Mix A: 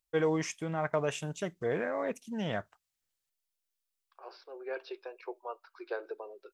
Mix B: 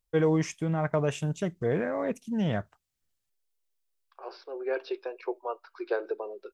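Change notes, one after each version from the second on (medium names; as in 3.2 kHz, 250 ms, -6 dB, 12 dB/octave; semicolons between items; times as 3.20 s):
second voice +4.5 dB; master: add bass shelf 310 Hz +11.5 dB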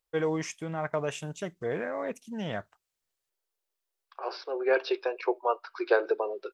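second voice +9.0 dB; master: add bass shelf 310 Hz -11.5 dB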